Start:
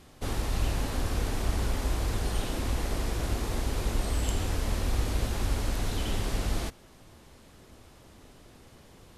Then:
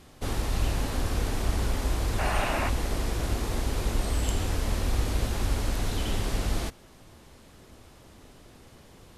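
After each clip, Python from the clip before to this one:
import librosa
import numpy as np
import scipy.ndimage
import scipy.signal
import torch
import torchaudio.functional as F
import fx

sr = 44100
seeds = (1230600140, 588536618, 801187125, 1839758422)

y = fx.spec_box(x, sr, start_s=2.19, length_s=0.5, low_hz=540.0, high_hz=2900.0, gain_db=10)
y = y * librosa.db_to_amplitude(1.5)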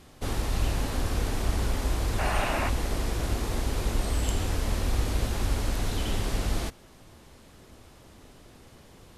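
y = x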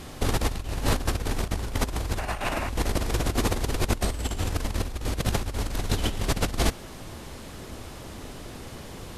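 y = fx.over_compress(x, sr, threshold_db=-31.0, ratio=-0.5)
y = y * librosa.db_to_amplitude(6.0)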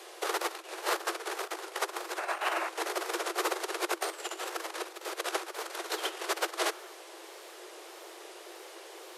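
y = fx.wow_flutter(x, sr, seeds[0], rate_hz=2.1, depth_cents=99.0)
y = scipy.signal.sosfilt(scipy.signal.cheby1(10, 1.0, 330.0, 'highpass', fs=sr, output='sos'), y)
y = fx.dynamic_eq(y, sr, hz=1300.0, q=1.6, threshold_db=-47.0, ratio=4.0, max_db=6)
y = y * librosa.db_to_amplitude(-3.0)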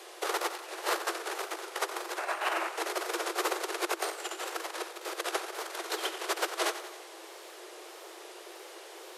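y = fx.echo_feedback(x, sr, ms=90, feedback_pct=58, wet_db=-12.0)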